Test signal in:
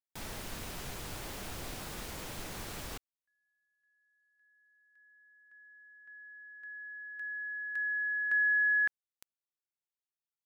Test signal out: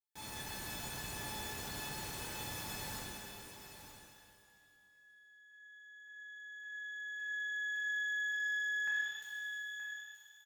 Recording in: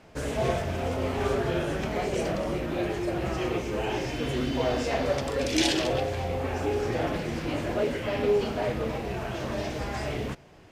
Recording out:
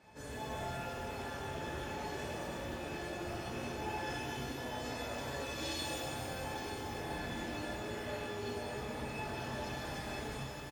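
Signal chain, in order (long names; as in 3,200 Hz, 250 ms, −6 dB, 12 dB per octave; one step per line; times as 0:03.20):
sub-octave generator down 2 octaves, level −4 dB
in parallel at −5 dB: soft clipping −23 dBFS
on the sum: high-pass filter 64 Hz 12 dB per octave
reversed playback
downward compressor 6 to 1, threshold −32 dBFS
reversed playback
notch filter 2,800 Hz, Q 26
tuned comb filter 870 Hz, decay 0.18 s, harmonics all, mix 90%
single-tap delay 924 ms −10.5 dB
reverb with rising layers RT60 2.1 s, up +12 semitones, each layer −8 dB, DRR −6 dB
level +3.5 dB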